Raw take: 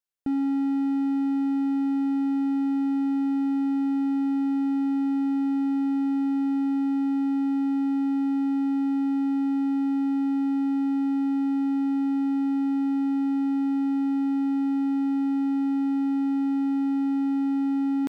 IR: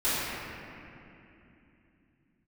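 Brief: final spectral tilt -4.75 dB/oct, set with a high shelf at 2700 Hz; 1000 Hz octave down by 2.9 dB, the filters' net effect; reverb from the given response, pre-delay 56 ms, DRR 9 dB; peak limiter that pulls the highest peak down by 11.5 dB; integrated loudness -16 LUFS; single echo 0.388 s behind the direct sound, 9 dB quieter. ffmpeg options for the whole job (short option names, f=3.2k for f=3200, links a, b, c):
-filter_complex "[0:a]equalizer=f=1k:t=o:g=-3.5,highshelf=f=2.7k:g=-3.5,alimiter=level_in=7.5dB:limit=-24dB:level=0:latency=1,volume=-7.5dB,aecho=1:1:388:0.355,asplit=2[a][b];[1:a]atrim=start_sample=2205,adelay=56[c];[b][c]afir=irnorm=-1:irlink=0,volume=-22.5dB[d];[a][d]amix=inputs=2:normalize=0,volume=23dB"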